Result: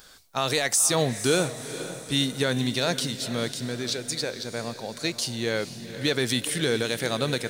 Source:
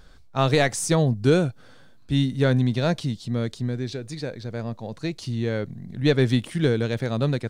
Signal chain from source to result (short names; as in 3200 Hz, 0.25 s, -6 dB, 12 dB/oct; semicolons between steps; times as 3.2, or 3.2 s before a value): RIAA curve recording; limiter -15 dBFS, peak gain reduction 11 dB; diffused feedback echo 0.479 s, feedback 49%, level -12 dB; gain +3 dB